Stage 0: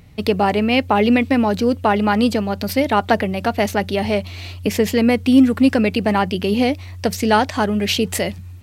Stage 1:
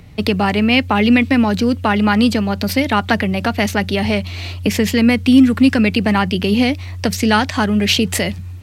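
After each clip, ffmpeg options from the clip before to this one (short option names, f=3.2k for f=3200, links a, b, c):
-filter_complex "[0:a]highshelf=f=9.2k:g=-5.5,acrossover=split=280|1100[a][b][c];[b]acompressor=threshold=-28dB:ratio=6[d];[a][d][c]amix=inputs=3:normalize=0,volume=5.5dB"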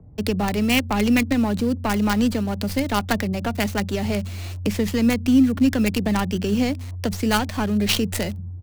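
-filter_complex "[0:a]acrossover=split=170|890[a][b][c];[a]aecho=1:1:43.73|180.8:0.447|0.316[d];[c]acrusher=bits=3:dc=4:mix=0:aa=0.000001[e];[d][b][e]amix=inputs=3:normalize=0,volume=-6dB"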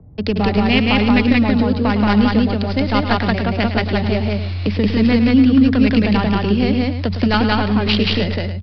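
-af "aecho=1:1:107.9|177.8|285.7:0.282|0.891|0.282,aresample=11025,aresample=44100,volume=3dB"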